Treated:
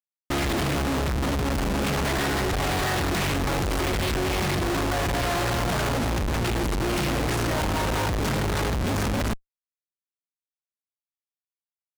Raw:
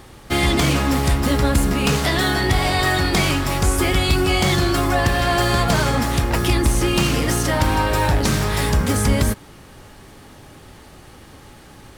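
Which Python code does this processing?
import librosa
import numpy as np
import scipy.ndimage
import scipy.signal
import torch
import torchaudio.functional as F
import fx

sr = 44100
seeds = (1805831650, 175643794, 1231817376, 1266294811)

y = fx.schmitt(x, sr, flips_db=-23.5)
y = fx.doppler_dist(y, sr, depth_ms=0.28)
y = y * librosa.db_to_amplitude(-5.5)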